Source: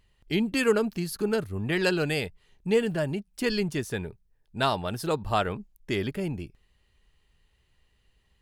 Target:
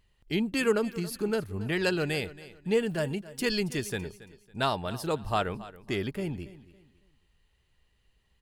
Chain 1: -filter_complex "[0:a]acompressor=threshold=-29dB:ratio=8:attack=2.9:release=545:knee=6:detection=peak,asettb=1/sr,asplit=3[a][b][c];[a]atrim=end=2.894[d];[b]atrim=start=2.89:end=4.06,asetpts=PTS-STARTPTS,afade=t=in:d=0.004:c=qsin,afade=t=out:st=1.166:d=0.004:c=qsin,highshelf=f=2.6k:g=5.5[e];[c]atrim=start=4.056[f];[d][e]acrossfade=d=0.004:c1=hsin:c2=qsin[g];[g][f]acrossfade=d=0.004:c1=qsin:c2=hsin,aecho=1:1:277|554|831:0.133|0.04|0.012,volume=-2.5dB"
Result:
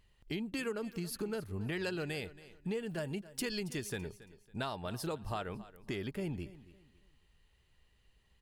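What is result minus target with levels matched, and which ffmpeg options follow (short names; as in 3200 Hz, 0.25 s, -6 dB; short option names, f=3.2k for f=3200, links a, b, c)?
compressor: peak gain reduction +14.5 dB
-filter_complex "[0:a]asettb=1/sr,asplit=3[a][b][c];[a]atrim=end=2.894[d];[b]atrim=start=2.89:end=4.06,asetpts=PTS-STARTPTS,afade=t=in:d=0.004:c=qsin,afade=t=out:st=1.166:d=0.004:c=qsin,highshelf=f=2.6k:g=5.5[e];[c]atrim=start=4.056[f];[d][e]acrossfade=d=0.004:c1=hsin:c2=qsin[g];[g][f]acrossfade=d=0.004:c1=qsin:c2=hsin,aecho=1:1:277|554|831:0.133|0.04|0.012,volume=-2.5dB"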